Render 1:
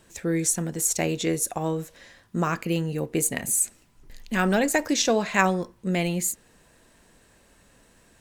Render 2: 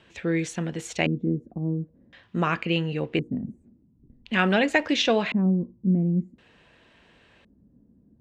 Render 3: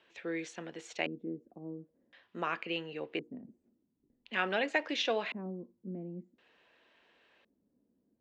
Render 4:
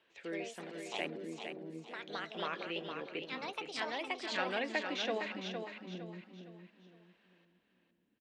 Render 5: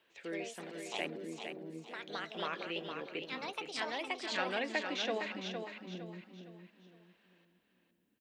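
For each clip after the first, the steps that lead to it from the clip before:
HPF 53 Hz; LFO low-pass square 0.47 Hz 240–3000 Hz
three-band isolator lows -19 dB, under 290 Hz, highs -24 dB, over 7100 Hz; gain -8.5 dB
echoes that change speed 0.11 s, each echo +3 st, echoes 2; on a send: feedback echo 0.46 s, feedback 35%, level -6.5 dB; on the sum: gain -5 dB
high shelf 8900 Hz +8 dB

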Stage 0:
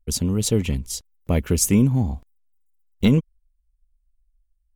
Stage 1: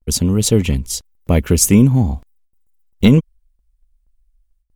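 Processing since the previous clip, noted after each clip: gate with hold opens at -60 dBFS; gain +6.5 dB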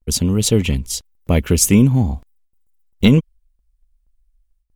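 dynamic EQ 3000 Hz, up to +4 dB, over -38 dBFS, Q 1.4; gain -1.5 dB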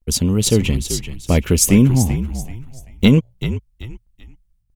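frequency-shifting echo 0.385 s, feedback 32%, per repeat -62 Hz, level -10.5 dB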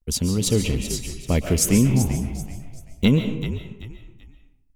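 reverb RT60 0.60 s, pre-delay 0.1 s, DRR 6.5 dB; gain -5.5 dB

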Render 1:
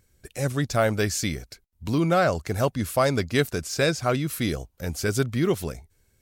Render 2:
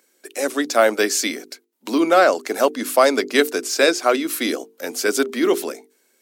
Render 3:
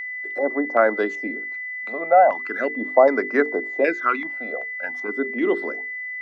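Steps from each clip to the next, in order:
steep high-pass 250 Hz 48 dB/oct; notches 50/100/150/200/250/300/350/400/450 Hz; gain +7.5 dB
phaser stages 12, 0.38 Hz, lowest notch 300–3200 Hz; LFO low-pass square 1.3 Hz 820–1700 Hz; whine 2000 Hz -25 dBFS; gain -3.5 dB

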